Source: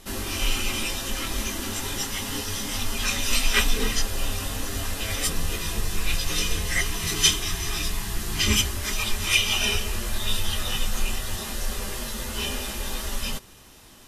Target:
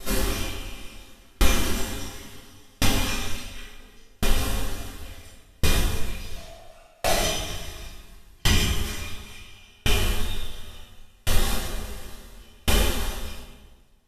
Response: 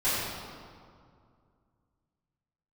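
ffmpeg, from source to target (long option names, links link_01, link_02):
-filter_complex "[0:a]acompressor=threshold=-31dB:ratio=10,asettb=1/sr,asplit=3[link_01][link_02][link_03];[link_01]atrim=end=6.354[link_04];[link_02]atrim=start=6.35:end=7.07,asetpts=PTS-STARTPTS,afade=type=in:duration=0.004:curve=qsin,afade=type=out:start_time=0.716:duration=0.004:curve=qsin,aeval=exprs='val(0)*sin(2*PI*660*n/s)':channel_layout=same[link_05];[link_03]atrim=start=7.066[link_06];[link_04][link_05]acrossfade=duration=0.004:curve1=hsin:curve2=qsin[link_07];[link_07][link_06]acrossfade=duration=0.004:curve1=qsin:curve2=hsin[link_08];[1:a]atrim=start_sample=2205,asetrate=30429,aresample=44100[link_09];[link_08][link_09]afir=irnorm=-1:irlink=0,aeval=exprs='val(0)*pow(10,-38*if(lt(mod(0.71*n/s,1),2*abs(0.71)/1000),1-mod(0.71*n/s,1)/(2*abs(0.71)/1000),(mod(0.71*n/s,1)-2*abs(0.71)/1000)/(1-2*abs(0.71)/1000))/20)':channel_layout=same,volume=1.5dB"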